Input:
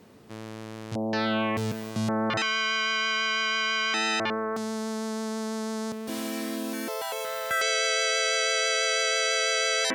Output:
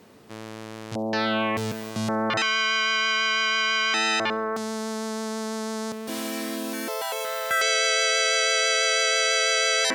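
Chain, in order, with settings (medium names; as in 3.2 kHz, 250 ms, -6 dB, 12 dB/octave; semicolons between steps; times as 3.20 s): bass shelf 290 Hz -5.5 dB; feedback echo behind a high-pass 69 ms, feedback 47%, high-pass 3.9 kHz, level -22 dB; trim +3.5 dB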